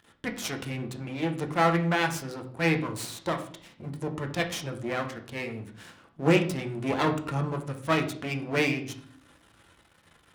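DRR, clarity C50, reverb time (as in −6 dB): 3.0 dB, 11.0 dB, 0.55 s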